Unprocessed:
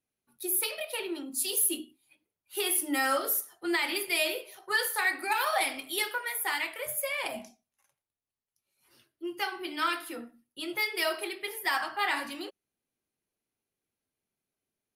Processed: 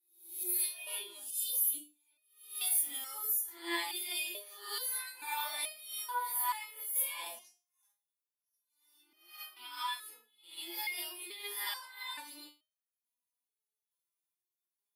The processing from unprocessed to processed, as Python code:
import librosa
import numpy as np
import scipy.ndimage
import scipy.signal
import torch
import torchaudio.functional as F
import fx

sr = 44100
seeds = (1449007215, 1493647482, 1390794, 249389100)

y = fx.spec_swells(x, sr, rise_s=0.56)
y = fx.riaa(y, sr, side='recording')
y = fx.small_body(y, sr, hz=(970.0, 3500.0), ring_ms=45, db=16)
y = fx.resonator_held(y, sr, hz=2.3, low_hz=170.0, high_hz=620.0)
y = y * librosa.db_to_amplitude(-4.0)